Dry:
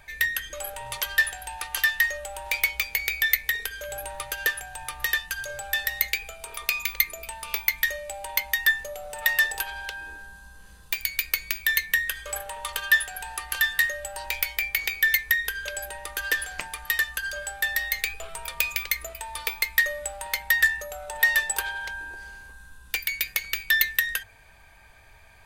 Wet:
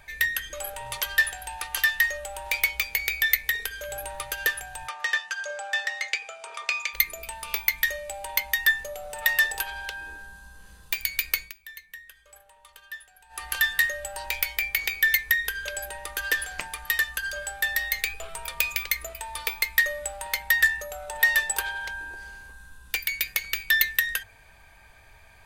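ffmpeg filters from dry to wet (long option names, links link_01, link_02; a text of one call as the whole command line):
ffmpeg -i in.wav -filter_complex "[0:a]asplit=3[link_01][link_02][link_03];[link_01]afade=type=out:start_time=4.87:duration=0.02[link_04];[link_02]highpass=490,equalizer=frequency=580:width_type=q:width=4:gain=4,equalizer=frequency=850:width_type=q:width=4:gain=3,equalizer=frequency=1300:width_type=q:width=4:gain=4,equalizer=frequency=4000:width_type=q:width=4:gain=-4,lowpass=frequency=7400:width=0.5412,lowpass=frequency=7400:width=1.3066,afade=type=in:start_time=4.87:duration=0.02,afade=type=out:start_time=6.93:duration=0.02[link_05];[link_03]afade=type=in:start_time=6.93:duration=0.02[link_06];[link_04][link_05][link_06]amix=inputs=3:normalize=0,asplit=3[link_07][link_08][link_09];[link_07]atrim=end=11.53,asetpts=PTS-STARTPTS,afade=type=out:start_time=11.38:duration=0.15:silence=0.1[link_10];[link_08]atrim=start=11.53:end=13.29,asetpts=PTS-STARTPTS,volume=-20dB[link_11];[link_09]atrim=start=13.29,asetpts=PTS-STARTPTS,afade=type=in:duration=0.15:silence=0.1[link_12];[link_10][link_11][link_12]concat=n=3:v=0:a=1" out.wav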